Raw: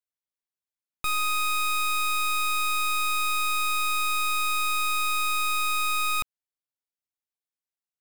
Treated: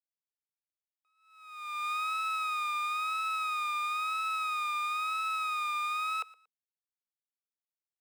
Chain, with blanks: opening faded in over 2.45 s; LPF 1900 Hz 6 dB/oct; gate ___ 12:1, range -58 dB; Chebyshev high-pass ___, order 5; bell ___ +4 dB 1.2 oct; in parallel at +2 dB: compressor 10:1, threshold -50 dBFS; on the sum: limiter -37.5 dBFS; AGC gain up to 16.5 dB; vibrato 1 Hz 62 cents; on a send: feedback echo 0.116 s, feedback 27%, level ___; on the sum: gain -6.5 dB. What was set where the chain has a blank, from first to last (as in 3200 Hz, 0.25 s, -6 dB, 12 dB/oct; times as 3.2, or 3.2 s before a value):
-27 dBFS, 440 Hz, 1500 Hz, -21.5 dB